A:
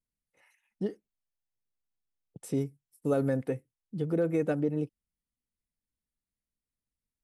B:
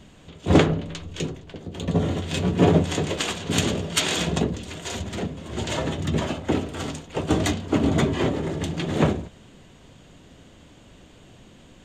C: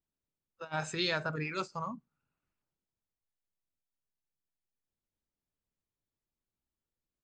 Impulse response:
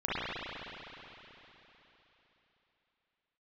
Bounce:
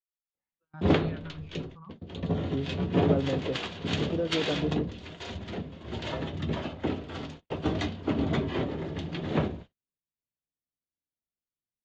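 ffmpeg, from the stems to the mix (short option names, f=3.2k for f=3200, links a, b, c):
-filter_complex "[0:a]lowpass=1.3k,volume=-2dB[a];[1:a]agate=range=-22dB:threshold=-37dB:ratio=16:detection=peak,adelay=350,volume=-7dB[b];[2:a]aemphasis=mode=reproduction:type=riaa,asplit=2[c][d];[d]afreqshift=-1.8[e];[c][e]amix=inputs=2:normalize=1,volume=-13dB[f];[a][b][f]amix=inputs=3:normalize=0,lowpass=f=4.8k:w=0.5412,lowpass=f=4.8k:w=1.3066,agate=range=-26dB:threshold=-51dB:ratio=16:detection=peak"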